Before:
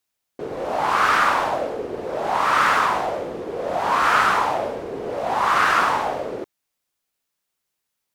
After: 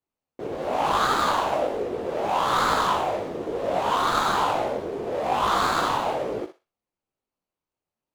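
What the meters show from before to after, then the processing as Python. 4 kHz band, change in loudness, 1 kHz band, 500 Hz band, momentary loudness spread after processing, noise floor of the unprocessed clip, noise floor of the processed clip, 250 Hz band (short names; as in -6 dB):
0.0 dB, -3.5 dB, -3.5 dB, -0.5 dB, 9 LU, -80 dBFS, under -85 dBFS, +0.5 dB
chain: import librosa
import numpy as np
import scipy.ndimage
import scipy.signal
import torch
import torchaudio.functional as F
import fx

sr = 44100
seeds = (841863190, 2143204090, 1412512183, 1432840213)

y = scipy.signal.medfilt(x, 25)
y = fx.echo_thinned(y, sr, ms=61, feedback_pct=27, hz=820.0, wet_db=-7.0)
y = fx.detune_double(y, sr, cents=38)
y = y * 10.0 ** (3.5 / 20.0)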